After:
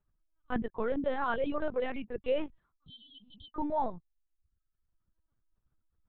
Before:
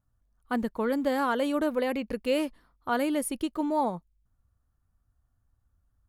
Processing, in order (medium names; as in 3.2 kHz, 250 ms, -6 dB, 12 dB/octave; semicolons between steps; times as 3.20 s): reverb removal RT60 0.88 s; spectral replace 2.89–3.47 s, 210–3000 Hz after; LPC vocoder at 8 kHz pitch kept; trim -3 dB